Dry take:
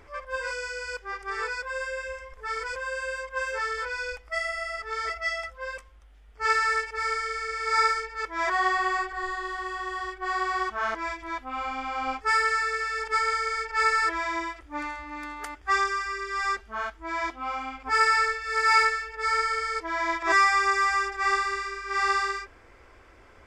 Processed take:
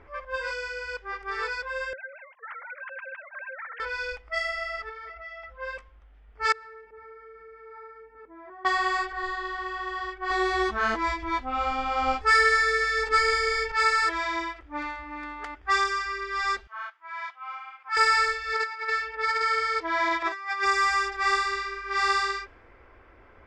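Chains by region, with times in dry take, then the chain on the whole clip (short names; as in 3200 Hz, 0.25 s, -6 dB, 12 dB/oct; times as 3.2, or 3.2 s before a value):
1.93–3.8 sine-wave speech + tilt +3.5 dB/oct + compressor 2.5:1, threshold -40 dBFS
4.89–5.6 LPF 4900 Hz + compressor, threshold -38 dBFS
6.52–8.65 band-pass 240 Hz, Q 1.1 + compressor 2.5:1, threshold -45 dBFS
10.3–13.72 low shelf 490 Hz +9.5 dB + doubler 13 ms -3.5 dB
16.67–17.97 ladder high-pass 860 Hz, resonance 25% + mismatched tape noise reduction encoder only
18.53–20.66 HPF 130 Hz 6 dB/oct + negative-ratio compressor -26 dBFS, ratio -0.5 + high shelf 6600 Hz -12 dB
whole clip: low-pass opened by the level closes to 2300 Hz, open at -20 dBFS; dynamic EQ 3900 Hz, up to +7 dB, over -48 dBFS, Q 2.1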